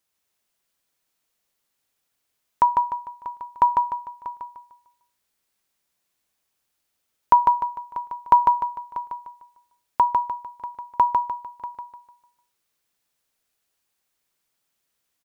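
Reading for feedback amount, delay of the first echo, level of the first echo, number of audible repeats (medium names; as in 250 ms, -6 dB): 36%, 150 ms, -4.0 dB, 4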